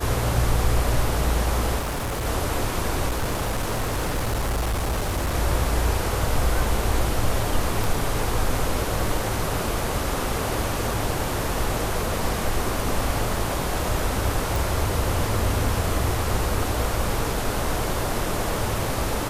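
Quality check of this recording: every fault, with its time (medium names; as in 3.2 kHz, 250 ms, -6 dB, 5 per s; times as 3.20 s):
1.79–2.26 s: clipped -24 dBFS
3.08–5.35 s: clipped -20.5 dBFS
7.84 s: pop
14.56 s: pop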